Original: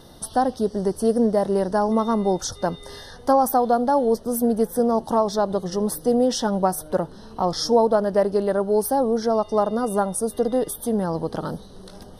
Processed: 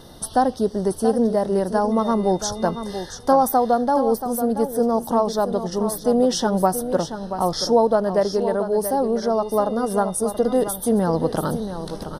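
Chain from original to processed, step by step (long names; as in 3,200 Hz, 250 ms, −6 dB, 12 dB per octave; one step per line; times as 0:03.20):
speech leveller 2 s
single-tap delay 680 ms −10 dB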